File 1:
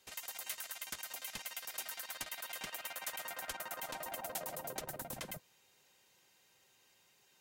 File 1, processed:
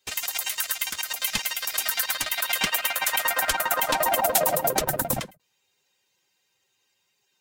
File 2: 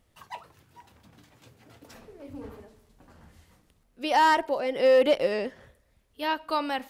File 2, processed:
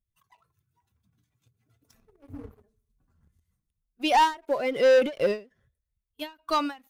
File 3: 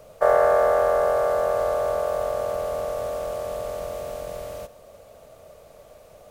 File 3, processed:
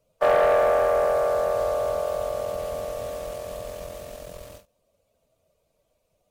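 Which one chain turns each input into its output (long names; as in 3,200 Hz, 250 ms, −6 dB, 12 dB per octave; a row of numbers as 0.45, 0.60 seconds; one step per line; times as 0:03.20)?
spectral dynamics exaggerated over time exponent 1.5
leveller curve on the samples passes 2
every ending faded ahead of time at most 210 dB per second
loudness normalisation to −24 LKFS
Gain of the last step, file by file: +17.0, 0.0, −5.0 decibels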